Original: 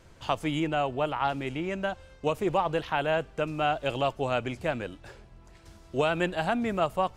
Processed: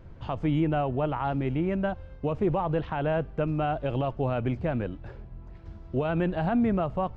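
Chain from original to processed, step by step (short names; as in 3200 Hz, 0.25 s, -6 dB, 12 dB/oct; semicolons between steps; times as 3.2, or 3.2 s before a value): tone controls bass +6 dB, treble +6 dB; limiter -18.5 dBFS, peak gain reduction 8 dB; tape spacing loss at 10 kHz 43 dB; gain +4 dB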